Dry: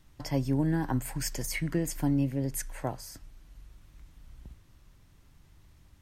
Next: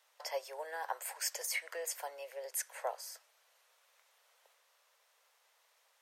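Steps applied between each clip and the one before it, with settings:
Butterworth high-pass 470 Hz 72 dB per octave
level −1.5 dB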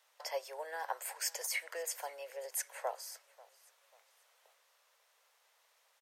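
repeating echo 540 ms, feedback 38%, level −22 dB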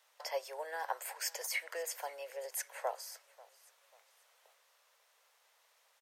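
dynamic equaliser 8,600 Hz, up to −4 dB, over −49 dBFS, Q 0.92
level +1 dB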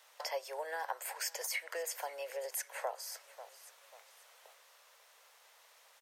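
downward compressor 2 to 1, threshold −49 dBFS, peak gain reduction 10.5 dB
level +7.5 dB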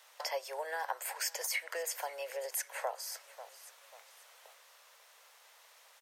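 low-shelf EQ 230 Hz −10 dB
level +2.5 dB

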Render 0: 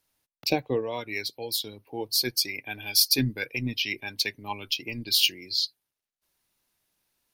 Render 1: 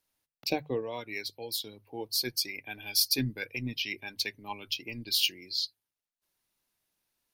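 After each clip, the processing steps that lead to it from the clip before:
mains-hum notches 50/100/150 Hz
level −5 dB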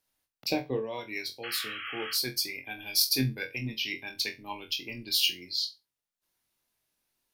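sound drawn into the spectrogram noise, 0:01.43–0:02.14, 1,100–3,300 Hz −40 dBFS
flutter between parallel walls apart 3.9 metres, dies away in 0.22 s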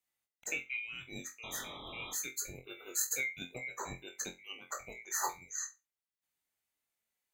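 neighbouring bands swapped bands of 2,000 Hz
level −8.5 dB

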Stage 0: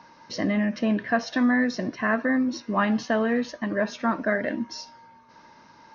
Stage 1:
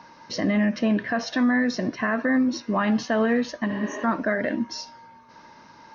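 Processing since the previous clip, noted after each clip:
healed spectral selection 0:03.72–0:04.01, 240–5,600 Hz before
brickwall limiter −17.5 dBFS, peak gain reduction 7 dB
level +3 dB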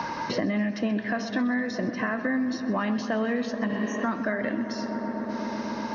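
feedback echo with a low-pass in the loop 126 ms, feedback 85%, low-pass 3,000 Hz, level −13 dB
multiband upward and downward compressor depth 100%
level −5 dB

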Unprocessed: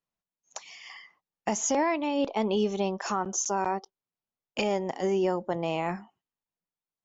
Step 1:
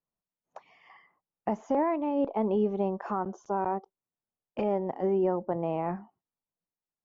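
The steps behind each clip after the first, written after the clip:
low-pass filter 1,100 Hz 12 dB per octave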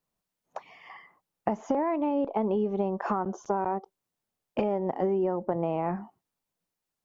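downward compressor, threshold −32 dBFS, peak gain reduction 10 dB
level +8 dB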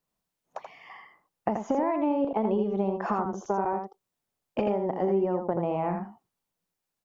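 single-tap delay 82 ms −6 dB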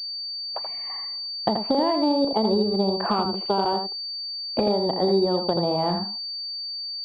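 switching amplifier with a slow clock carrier 4,600 Hz
level +4.5 dB

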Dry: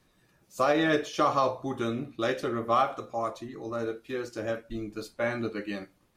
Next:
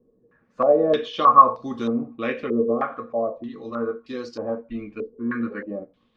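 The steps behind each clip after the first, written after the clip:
healed spectral selection 0:05.15–0:05.53, 370–870 Hz both
hollow resonant body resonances 240/470/1,100 Hz, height 15 dB, ringing for 100 ms
low-pass on a step sequencer 3.2 Hz 440–4,800 Hz
level −3.5 dB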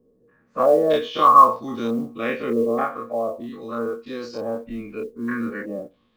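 every bin's largest magnitude spread in time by 60 ms
noise that follows the level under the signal 34 dB
level −2.5 dB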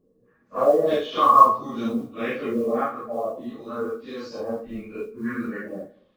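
random phases in long frames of 100 ms
comb and all-pass reverb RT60 0.82 s, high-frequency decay 0.9×, pre-delay 5 ms, DRR 16.5 dB
level −2.5 dB

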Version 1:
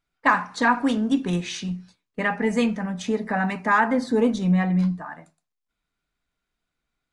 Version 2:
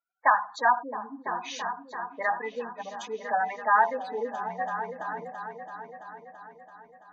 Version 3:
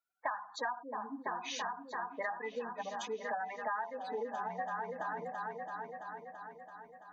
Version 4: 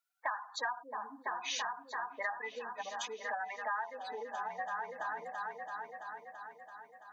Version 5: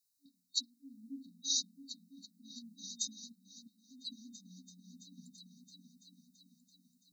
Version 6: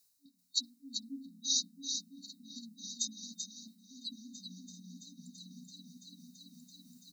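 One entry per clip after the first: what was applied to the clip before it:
gate on every frequency bin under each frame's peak −15 dB strong; high-pass filter sweep 710 Hz → 65 Hz, 0:04.82–0:05.65; echo whose low-pass opens from repeat to repeat 334 ms, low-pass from 200 Hz, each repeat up 2 octaves, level −6 dB; level −5.5 dB
downward compressor 8 to 1, threshold −33 dBFS, peak gain reduction 17 dB; level −1.5 dB
high-pass filter 1,300 Hz 6 dB per octave; level +4.5 dB
brick-wall band-stop 280–3,700 Hz; level +8.5 dB
reversed playback; upward compression, threshold −49 dBFS; reversed playback; single-tap delay 387 ms −6.5 dB; level +2 dB

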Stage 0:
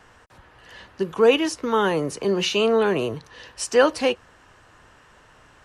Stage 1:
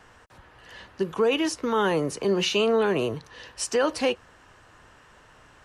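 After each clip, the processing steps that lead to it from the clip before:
brickwall limiter −14 dBFS, peak gain reduction 7.5 dB
level −1 dB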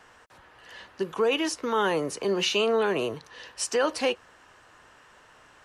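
low-shelf EQ 210 Hz −10.5 dB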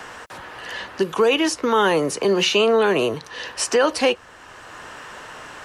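multiband upward and downward compressor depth 40%
level +7.5 dB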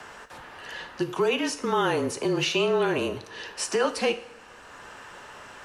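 coupled-rooms reverb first 0.56 s, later 2.3 s, DRR 9 dB
frequency shifter −31 Hz
level −7 dB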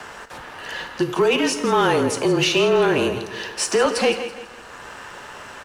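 repeating echo 164 ms, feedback 41%, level −13 dB
leveller curve on the samples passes 1
level +3.5 dB

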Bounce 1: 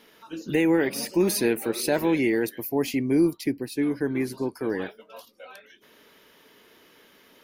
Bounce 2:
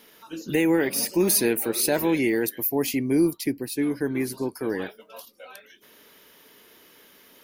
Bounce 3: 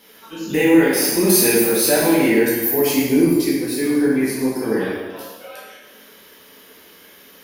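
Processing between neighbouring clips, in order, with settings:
high-shelf EQ 7,300 Hz +11 dB
dense smooth reverb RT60 1.3 s, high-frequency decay 0.85×, DRR −7 dB

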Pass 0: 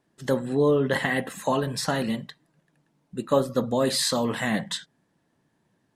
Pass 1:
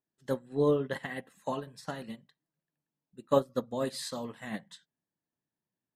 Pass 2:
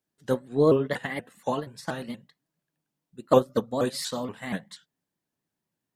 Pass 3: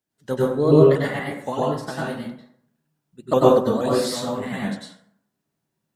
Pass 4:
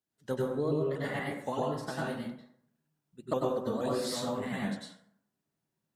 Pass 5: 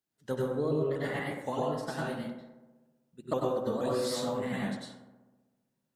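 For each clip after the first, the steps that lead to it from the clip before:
expander for the loud parts 2.5 to 1, over −31 dBFS; level −2.5 dB
pitch modulation by a square or saw wave saw up 4.2 Hz, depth 160 cents; level +6 dB
dense smooth reverb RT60 0.66 s, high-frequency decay 0.55×, pre-delay 85 ms, DRR −5.5 dB; level −1 dB
downward compressor 6 to 1, threshold −21 dBFS, peak gain reduction 12.5 dB; level −6.5 dB
feedback echo with a low-pass in the loop 64 ms, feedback 74%, low-pass 2,400 Hz, level −12 dB

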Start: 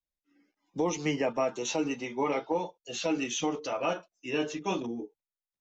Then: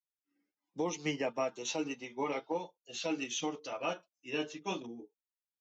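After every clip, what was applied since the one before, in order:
high-pass filter 60 Hz
dynamic equaliser 4,000 Hz, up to +5 dB, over −49 dBFS, Q 0.8
expander for the loud parts 1.5 to 1, over −42 dBFS
level −5 dB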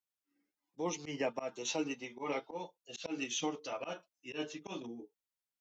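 volume swells 110 ms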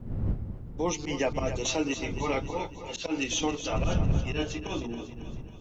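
wind on the microphone 130 Hz −41 dBFS
in parallel at +0.5 dB: brickwall limiter −29.5 dBFS, peak gain reduction 9 dB
on the sum: echo with a time of its own for lows and highs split 340 Hz, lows 207 ms, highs 274 ms, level −10.5 dB
level +2.5 dB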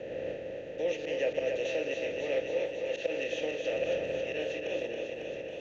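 compressor on every frequency bin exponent 0.4
formant filter e
feedback echo with a swinging delay time 367 ms, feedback 64%, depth 149 cents, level −23 dB
level +2 dB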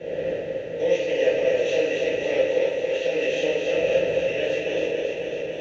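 convolution reverb, pre-delay 3 ms, DRR −10 dB
level −1.5 dB

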